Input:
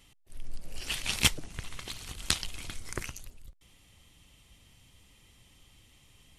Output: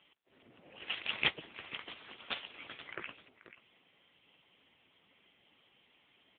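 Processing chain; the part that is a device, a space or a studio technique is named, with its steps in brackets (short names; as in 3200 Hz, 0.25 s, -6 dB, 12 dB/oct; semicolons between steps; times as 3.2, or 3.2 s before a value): 0.46–1.28 dynamic EQ 140 Hz, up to +5 dB, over -52 dBFS, Q 1.5; 2.58–3.24 doubler 18 ms -11 dB; satellite phone (BPF 310–3400 Hz; echo 0.485 s -14.5 dB; gain +2.5 dB; AMR-NB 6.7 kbps 8000 Hz)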